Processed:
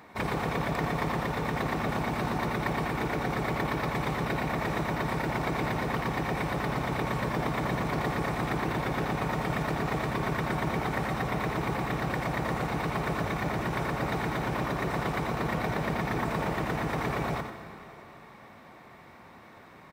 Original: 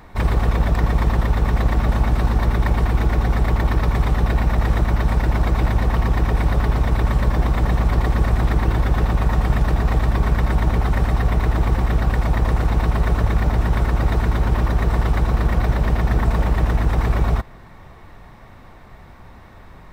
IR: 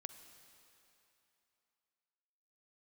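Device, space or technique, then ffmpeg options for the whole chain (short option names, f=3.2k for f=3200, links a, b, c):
PA in a hall: -filter_complex "[0:a]highpass=180,equalizer=f=2.3k:t=o:w=0.25:g=4,aecho=1:1:92:0.376[a];[1:a]atrim=start_sample=2205[b];[a][b]afir=irnorm=-1:irlink=0"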